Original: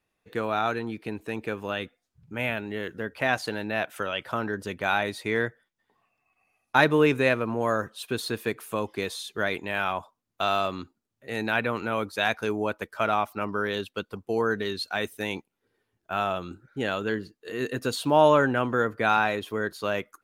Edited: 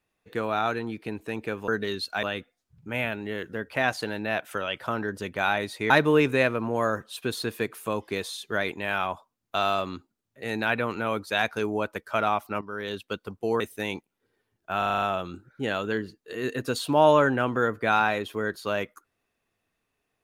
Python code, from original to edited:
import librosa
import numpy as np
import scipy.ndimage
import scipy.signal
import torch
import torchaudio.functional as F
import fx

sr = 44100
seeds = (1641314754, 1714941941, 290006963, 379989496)

y = fx.edit(x, sr, fx.cut(start_s=5.35, length_s=1.41),
    fx.fade_in_from(start_s=13.47, length_s=0.47, floor_db=-13.0),
    fx.move(start_s=14.46, length_s=0.55, to_s=1.68),
    fx.stutter(start_s=16.19, slice_s=0.04, count=7), tone=tone)